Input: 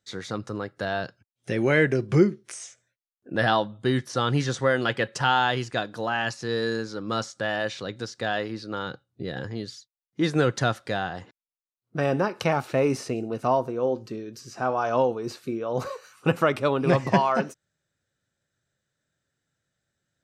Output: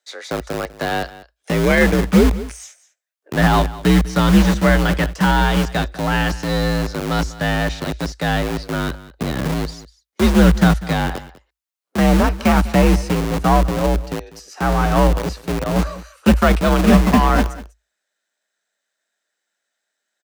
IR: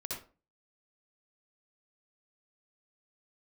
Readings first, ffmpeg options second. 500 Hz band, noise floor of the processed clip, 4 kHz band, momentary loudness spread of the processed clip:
+4.5 dB, -79 dBFS, +6.5 dB, 12 LU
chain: -filter_complex "[0:a]aeval=exprs='if(lt(val(0),0),0.708*val(0),val(0))':c=same,deesser=0.9,aeval=exprs='0.398*(cos(1*acos(clip(val(0)/0.398,-1,1)))-cos(1*PI/2))+0.0126*(cos(7*acos(clip(val(0)/0.398,-1,1)))-cos(7*PI/2))':c=same,asubboost=boost=5:cutoff=140,acrossover=split=360|2200[s0][s1][s2];[s0]acrusher=bits=4:mix=0:aa=0.000001[s3];[s3][s1][s2]amix=inputs=3:normalize=0,afreqshift=54,aecho=1:1:197:0.126,alimiter=level_in=2.99:limit=0.891:release=50:level=0:latency=1,volume=0.891"

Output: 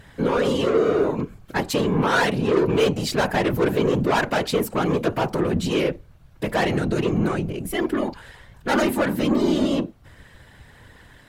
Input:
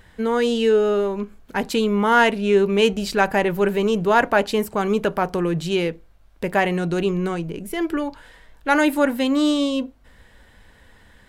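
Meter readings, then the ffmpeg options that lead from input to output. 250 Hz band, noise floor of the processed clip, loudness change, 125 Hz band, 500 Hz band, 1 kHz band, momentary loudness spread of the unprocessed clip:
-1.0 dB, -50 dBFS, -1.5 dB, +3.0 dB, -2.0 dB, -3.5 dB, 10 LU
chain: -af "asoftclip=type=tanh:threshold=0.106,afftfilt=real='hypot(re,im)*cos(2*PI*random(0))':imag='hypot(re,im)*sin(2*PI*random(1))':win_size=512:overlap=0.75,volume=2.82"

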